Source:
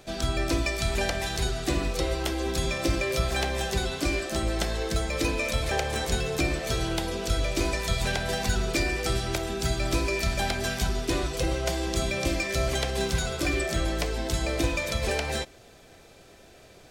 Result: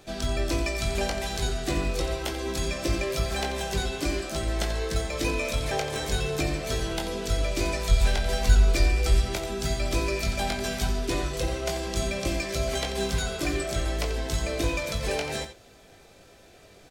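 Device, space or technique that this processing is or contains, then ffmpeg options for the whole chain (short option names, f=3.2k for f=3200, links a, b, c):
slapback doubling: -filter_complex "[0:a]asplit=3[a][b][c];[b]adelay=20,volume=-6dB[d];[c]adelay=88,volume=-11dB[e];[a][d][e]amix=inputs=3:normalize=0,asplit=3[f][g][h];[f]afade=t=out:st=7.88:d=0.02[i];[g]asubboost=boost=4.5:cutoff=72,afade=t=in:st=7.88:d=0.02,afade=t=out:st=9.24:d=0.02[j];[h]afade=t=in:st=9.24:d=0.02[k];[i][j][k]amix=inputs=3:normalize=0,volume=-2dB"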